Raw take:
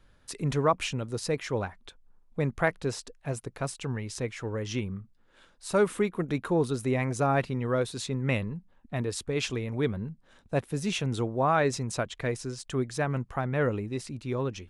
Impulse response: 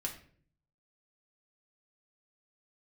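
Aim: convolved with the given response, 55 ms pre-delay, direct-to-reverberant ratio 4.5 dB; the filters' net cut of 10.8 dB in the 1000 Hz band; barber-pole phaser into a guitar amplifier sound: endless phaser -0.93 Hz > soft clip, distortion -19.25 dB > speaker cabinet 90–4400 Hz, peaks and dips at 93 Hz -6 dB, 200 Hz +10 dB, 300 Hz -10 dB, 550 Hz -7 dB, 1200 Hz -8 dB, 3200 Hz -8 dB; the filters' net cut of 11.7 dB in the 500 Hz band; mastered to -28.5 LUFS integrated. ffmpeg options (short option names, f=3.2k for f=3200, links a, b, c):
-filter_complex "[0:a]equalizer=f=500:t=o:g=-9,equalizer=f=1k:t=o:g=-7,asplit=2[a][b];[1:a]atrim=start_sample=2205,adelay=55[c];[b][c]afir=irnorm=-1:irlink=0,volume=-5dB[d];[a][d]amix=inputs=2:normalize=0,asplit=2[e][f];[f]afreqshift=-0.93[g];[e][g]amix=inputs=2:normalize=1,asoftclip=threshold=-24dB,highpass=90,equalizer=f=93:t=q:w=4:g=-6,equalizer=f=200:t=q:w=4:g=10,equalizer=f=300:t=q:w=4:g=-10,equalizer=f=550:t=q:w=4:g=-7,equalizer=f=1.2k:t=q:w=4:g=-8,equalizer=f=3.2k:t=q:w=4:g=-8,lowpass=f=4.4k:w=0.5412,lowpass=f=4.4k:w=1.3066,volume=7dB"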